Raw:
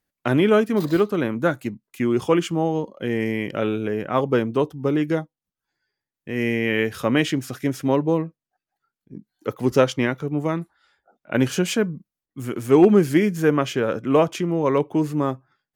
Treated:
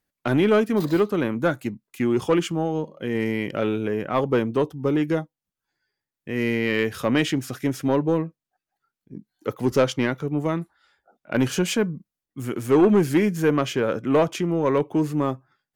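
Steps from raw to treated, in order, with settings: 2.52–3.15 s: feedback comb 78 Hz, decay 0.37 s, harmonics all, mix 30%; saturation -10.5 dBFS, distortion -17 dB

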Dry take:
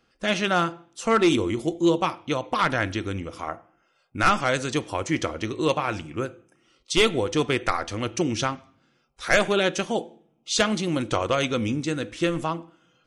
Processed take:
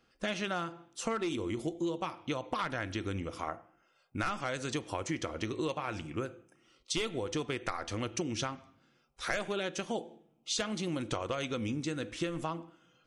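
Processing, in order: compression 10:1, threshold -27 dBFS, peak gain reduction 12.5 dB; trim -3.5 dB

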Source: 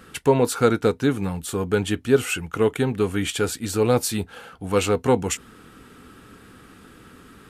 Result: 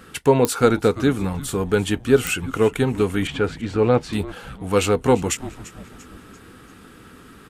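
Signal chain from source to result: 3.27–4.13 s: low-pass 2.6 kHz 12 dB/octave; frequency-shifting echo 343 ms, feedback 46%, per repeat -150 Hz, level -17 dB; clicks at 0.45/2.27 s, -6 dBFS; trim +2 dB

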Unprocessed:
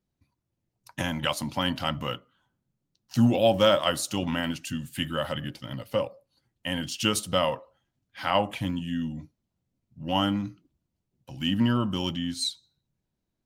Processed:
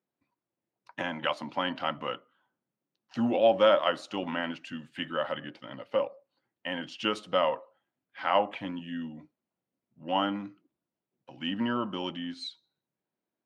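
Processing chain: band-pass 320–2400 Hz

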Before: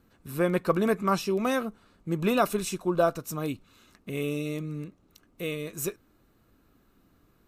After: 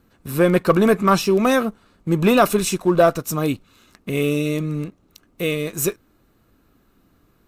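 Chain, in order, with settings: waveshaping leveller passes 1; trim +6.5 dB

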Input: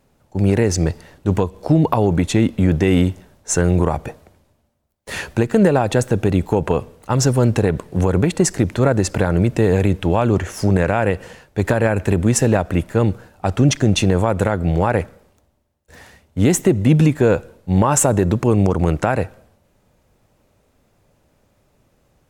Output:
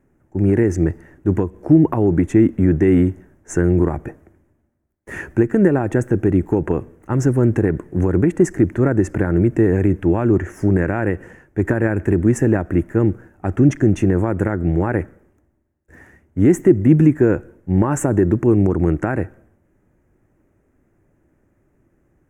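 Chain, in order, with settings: FFT filter 220 Hz 0 dB, 340 Hz +8 dB, 480 Hz -5 dB, 1.1 kHz -6 dB, 1.8 kHz +1 dB, 4.2 kHz -27 dB, 6.3 kHz -11 dB; trim -1 dB

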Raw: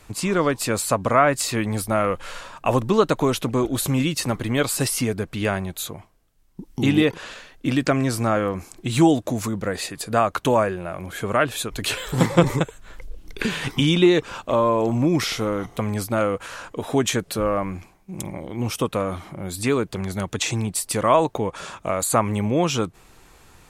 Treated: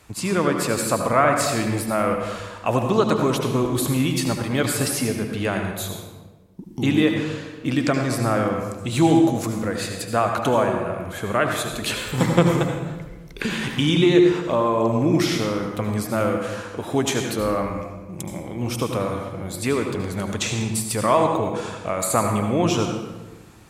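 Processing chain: high-pass 43 Hz; reverberation RT60 1.2 s, pre-delay 70 ms, DRR 3.5 dB; trim -1.5 dB

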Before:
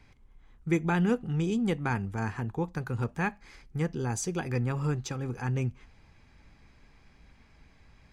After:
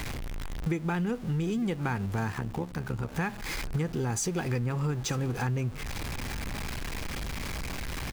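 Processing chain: jump at every zero crossing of -39 dBFS; compression 10:1, threshold -36 dBFS, peak gain reduction 15.5 dB; on a send: delay 906 ms -19.5 dB; 2.32–3.13 s: on the sum: AM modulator 70 Hz, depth 55%; trim +9 dB

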